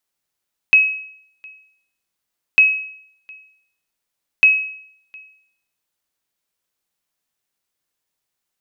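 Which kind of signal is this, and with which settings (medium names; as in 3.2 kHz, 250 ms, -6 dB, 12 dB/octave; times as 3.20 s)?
sonar ping 2.56 kHz, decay 0.65 s, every 1.85 s, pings 3, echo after 0.71 s, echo -28 dB -4.5 dBFS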